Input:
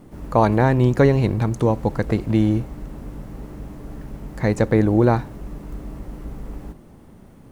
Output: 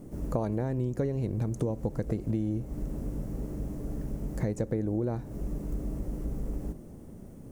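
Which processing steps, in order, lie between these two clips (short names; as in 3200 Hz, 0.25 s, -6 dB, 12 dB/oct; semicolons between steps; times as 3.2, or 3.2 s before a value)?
band shelf 1900 Hz -9.5 dB 2.8 oct; compressor 12:1, threshold -26 dBFS, peak gain reduction 16 dB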